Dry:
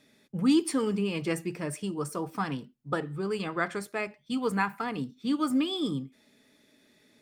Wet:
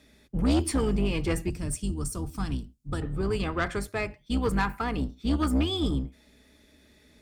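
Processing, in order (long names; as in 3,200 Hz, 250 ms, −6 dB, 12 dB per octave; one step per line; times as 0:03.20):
sub-octave generator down 2 octaves, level +1 dB
0:01.50–0:03.02: graphic EQ with 10 bands 500 Hz −10 dB, 1,000 Hz −7 dB, 2,000 Hz −9 dB, 8,000 Hz +5 dB
soft clipping −21.5 dBFS, distortion −11 dB
level +3 dB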